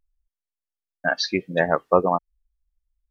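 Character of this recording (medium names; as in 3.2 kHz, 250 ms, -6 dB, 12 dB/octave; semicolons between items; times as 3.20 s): noise floor -90 dBFS; spectral tilt -3.0 dB/octave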